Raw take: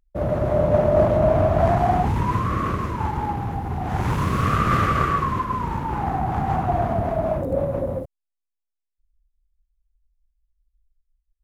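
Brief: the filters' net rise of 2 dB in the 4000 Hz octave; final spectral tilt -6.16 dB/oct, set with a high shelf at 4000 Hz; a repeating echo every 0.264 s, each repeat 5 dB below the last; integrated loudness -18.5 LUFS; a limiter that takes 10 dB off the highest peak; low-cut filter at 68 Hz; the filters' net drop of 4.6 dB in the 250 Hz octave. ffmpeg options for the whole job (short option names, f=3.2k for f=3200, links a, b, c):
-af "highpass=68,equalizer=f=250:t=o:g=-7,highshelf=f=4k:g=-4,equalizer=f=4k:t=o:g=5,alimiter=limit=-17.5dB:level=0:latency=1,aecho=1:1:264|528|792|1056|1320|1584|1848:0.562|0.315|0.176|0.0988|0.0553|0.031|0.0173,volume=6.5dB"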